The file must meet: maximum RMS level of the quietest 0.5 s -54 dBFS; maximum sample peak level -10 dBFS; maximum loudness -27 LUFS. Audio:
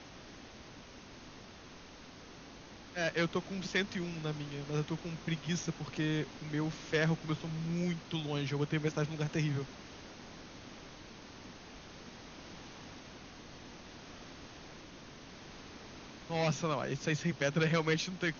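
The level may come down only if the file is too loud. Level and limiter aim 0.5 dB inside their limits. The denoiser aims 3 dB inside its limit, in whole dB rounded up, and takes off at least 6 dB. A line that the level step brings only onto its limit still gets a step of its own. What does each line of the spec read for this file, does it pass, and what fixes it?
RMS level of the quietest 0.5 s -52 dBFS: fail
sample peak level -17.0 dBFS: OK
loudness -35.0 LUFS: OK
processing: denoiser 6 dB, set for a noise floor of -52 dBFS

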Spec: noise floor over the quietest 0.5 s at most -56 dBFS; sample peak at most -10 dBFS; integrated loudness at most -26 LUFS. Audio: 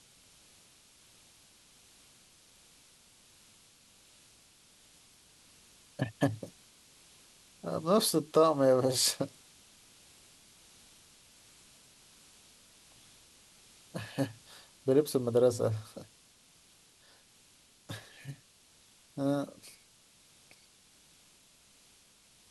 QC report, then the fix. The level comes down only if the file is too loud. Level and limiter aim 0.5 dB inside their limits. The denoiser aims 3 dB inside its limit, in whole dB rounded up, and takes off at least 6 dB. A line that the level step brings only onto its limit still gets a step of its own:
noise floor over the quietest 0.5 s -63 dBFS: OK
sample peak -12.5 dBFS: OK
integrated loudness -30.5 LUFS: OK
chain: none

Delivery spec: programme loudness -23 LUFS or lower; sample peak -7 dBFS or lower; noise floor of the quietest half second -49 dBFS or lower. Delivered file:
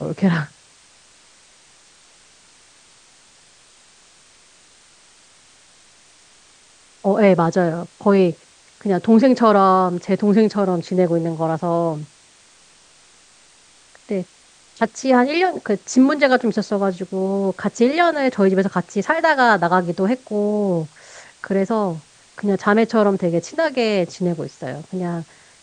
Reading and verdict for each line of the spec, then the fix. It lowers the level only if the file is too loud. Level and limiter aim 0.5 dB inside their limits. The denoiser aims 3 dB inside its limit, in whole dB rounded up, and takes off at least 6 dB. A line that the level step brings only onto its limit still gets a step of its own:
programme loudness -18.5 LUFS: fail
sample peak -2.0 dBFS: fail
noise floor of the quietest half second -51 dBFS: OK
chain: gain -5 dB; limiter -7.5 dBFS

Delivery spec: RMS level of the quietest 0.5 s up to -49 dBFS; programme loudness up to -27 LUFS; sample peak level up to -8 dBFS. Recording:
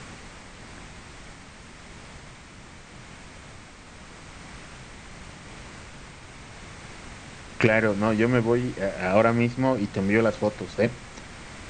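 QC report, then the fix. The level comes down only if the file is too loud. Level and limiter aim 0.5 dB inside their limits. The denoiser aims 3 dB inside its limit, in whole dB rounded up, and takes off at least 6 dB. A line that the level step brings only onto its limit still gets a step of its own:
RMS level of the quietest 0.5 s -45 dBFS: fail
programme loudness -23.5 LUFS: fail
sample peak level -4.5 dBFS: fail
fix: denoiser 6 dB, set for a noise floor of -45 dBFS; gain -4 dB

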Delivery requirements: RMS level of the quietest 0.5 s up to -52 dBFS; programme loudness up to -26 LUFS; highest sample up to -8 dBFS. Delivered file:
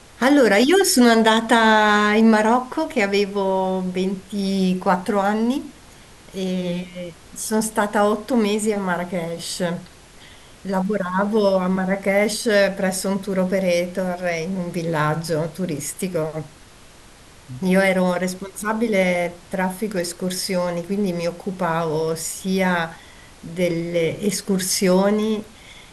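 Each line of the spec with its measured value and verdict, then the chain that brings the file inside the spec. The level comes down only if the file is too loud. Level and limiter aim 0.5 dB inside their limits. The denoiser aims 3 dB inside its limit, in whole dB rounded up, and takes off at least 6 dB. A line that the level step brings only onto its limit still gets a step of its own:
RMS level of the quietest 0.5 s -46 dBFS: fail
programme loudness -20.5 LUFS: fail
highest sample -3.0 dBFS: fail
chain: denoiser 6 dB, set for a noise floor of -46 dBFS; gain -6 dB

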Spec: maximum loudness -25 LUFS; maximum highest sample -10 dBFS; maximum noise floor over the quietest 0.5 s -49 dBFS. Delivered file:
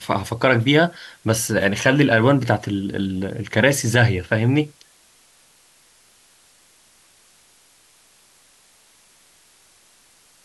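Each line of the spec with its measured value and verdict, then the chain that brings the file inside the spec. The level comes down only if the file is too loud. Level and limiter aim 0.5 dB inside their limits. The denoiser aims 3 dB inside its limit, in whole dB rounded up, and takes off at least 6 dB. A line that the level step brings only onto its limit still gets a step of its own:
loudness -19.0 LUFS: fail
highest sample -3.0 dBFS: fail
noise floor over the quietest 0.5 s -55 dBFS: OK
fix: gain -6.5 dB; limiter -10.5 dBFS

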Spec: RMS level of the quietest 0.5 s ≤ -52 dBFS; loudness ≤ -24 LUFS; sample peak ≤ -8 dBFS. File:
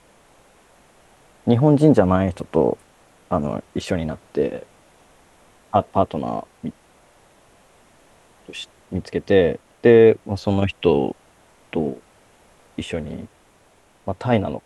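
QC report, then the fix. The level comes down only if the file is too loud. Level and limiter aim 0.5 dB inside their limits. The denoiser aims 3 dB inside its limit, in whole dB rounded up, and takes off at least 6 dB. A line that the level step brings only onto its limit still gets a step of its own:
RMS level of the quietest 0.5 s -56 dBFS: OK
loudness -20.0 LUFS: fail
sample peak -2.5 dBFS: fail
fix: gain -4.5 dB; limiter -8.5 dBFS

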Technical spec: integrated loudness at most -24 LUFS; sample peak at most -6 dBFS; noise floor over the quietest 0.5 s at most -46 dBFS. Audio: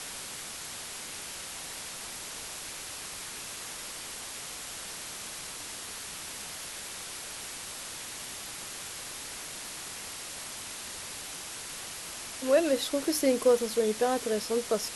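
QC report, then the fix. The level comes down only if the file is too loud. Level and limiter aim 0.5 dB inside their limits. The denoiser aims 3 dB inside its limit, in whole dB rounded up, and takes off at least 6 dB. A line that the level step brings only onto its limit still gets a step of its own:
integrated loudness -33.5 LUFS: OK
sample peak -12.5 dBFS: OK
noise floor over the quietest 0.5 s -41 dBFS: fail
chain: denoiser 8 dB, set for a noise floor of -41 dBFS

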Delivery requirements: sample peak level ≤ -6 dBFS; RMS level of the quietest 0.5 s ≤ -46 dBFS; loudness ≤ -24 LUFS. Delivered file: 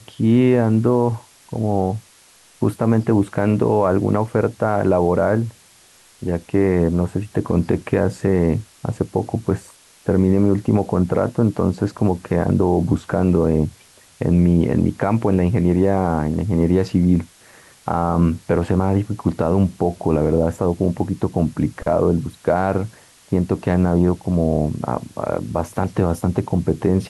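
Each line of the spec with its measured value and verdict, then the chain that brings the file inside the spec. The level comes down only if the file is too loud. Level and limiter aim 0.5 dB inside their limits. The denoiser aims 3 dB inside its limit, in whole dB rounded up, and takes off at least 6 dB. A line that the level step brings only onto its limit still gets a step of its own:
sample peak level -5.5 dBFS: fail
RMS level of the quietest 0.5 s -51 dBFS: OK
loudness -19.5 LUFS: fail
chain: gain -5 dB

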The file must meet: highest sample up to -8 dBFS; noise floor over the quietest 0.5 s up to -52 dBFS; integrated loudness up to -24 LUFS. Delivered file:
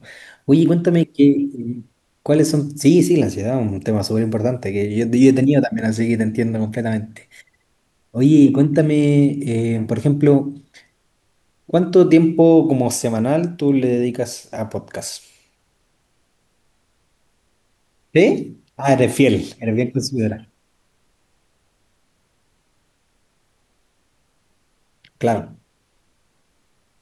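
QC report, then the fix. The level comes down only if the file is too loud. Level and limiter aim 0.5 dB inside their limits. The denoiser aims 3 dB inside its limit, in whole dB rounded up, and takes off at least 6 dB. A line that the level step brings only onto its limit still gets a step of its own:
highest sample -2.0 dBFS: fail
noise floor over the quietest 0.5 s -64 dBFS: OK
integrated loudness -17.0 LUFS: fail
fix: gain -7.5 dB

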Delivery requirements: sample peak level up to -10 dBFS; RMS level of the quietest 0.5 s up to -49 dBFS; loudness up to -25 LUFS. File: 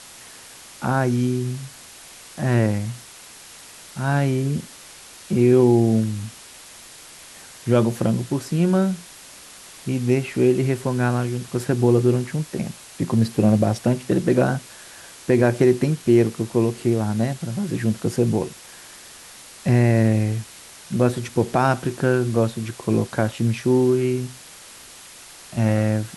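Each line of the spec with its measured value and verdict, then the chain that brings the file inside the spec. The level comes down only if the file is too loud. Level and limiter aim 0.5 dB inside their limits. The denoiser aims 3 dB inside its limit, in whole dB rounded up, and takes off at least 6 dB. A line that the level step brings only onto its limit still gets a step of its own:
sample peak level -5.5 dBFS: fail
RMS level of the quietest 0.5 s -43 dBFS: fail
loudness -21.0 LUFS: fail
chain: denoiser 6 dB, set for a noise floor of -43 dBFS; gain -4.5 dB; limiter -10.5 dBFS

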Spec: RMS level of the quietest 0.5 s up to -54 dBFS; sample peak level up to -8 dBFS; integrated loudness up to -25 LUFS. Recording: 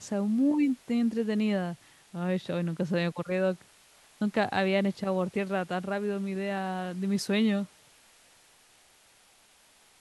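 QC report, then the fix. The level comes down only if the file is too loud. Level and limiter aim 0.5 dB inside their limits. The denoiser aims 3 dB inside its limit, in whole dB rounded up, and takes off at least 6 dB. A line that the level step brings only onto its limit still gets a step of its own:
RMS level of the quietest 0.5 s -61 dBFS: OK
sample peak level -13.0 dBFS: OK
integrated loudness -29.5 LUFS: OK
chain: none

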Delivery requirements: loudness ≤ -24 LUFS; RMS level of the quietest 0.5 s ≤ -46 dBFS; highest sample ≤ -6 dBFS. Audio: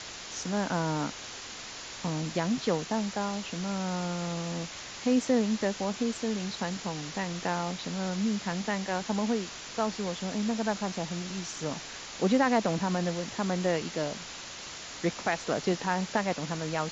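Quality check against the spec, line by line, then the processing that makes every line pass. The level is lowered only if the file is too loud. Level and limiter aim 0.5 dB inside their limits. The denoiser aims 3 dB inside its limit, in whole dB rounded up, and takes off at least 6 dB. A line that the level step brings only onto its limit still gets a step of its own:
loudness -31.5 LUFS: OK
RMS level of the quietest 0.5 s -42 dBFS: fail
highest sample -12.5 dBFS: OK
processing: denoiser 7 dB, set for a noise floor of -42 dBFS

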